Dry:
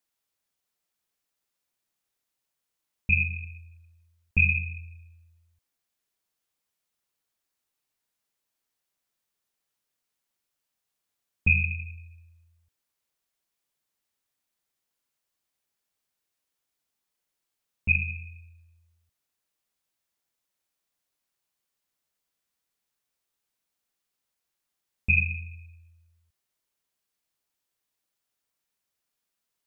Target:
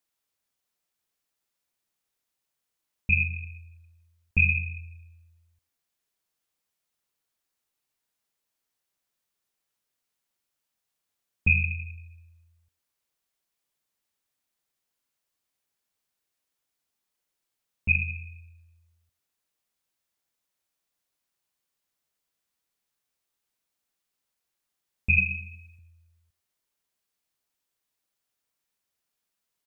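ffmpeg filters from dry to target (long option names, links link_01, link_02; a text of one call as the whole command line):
ffmpeg -i in.wav -filter_complex "[0:a]asettb=1/sr,asplit=3[link_01][link_02][link_03];[link_01]atrim=end=25.184[link_04];[link_02]atrim=start=25.18:end=25.79,asetpts=PTS-STARTPTS,afade=type=in:duration=0.004:curve=qsin,afade=type=out:start_time=0.606:duration=0.004:curve=qsin,aecho=1:1:4.7:0.97,atrim=end_sample=26901[link_05];[link_03]atrim=start=25.786[link_06];[link_04][link_05]acrossfade=duration=0.004:curve1=hsin:curve2=qsin[link_07];[link_07][link_06]acrossfade=duration=0.004:curve1=qsin:curve2=hsin,aecho=1:1:105:0.0668" out.wav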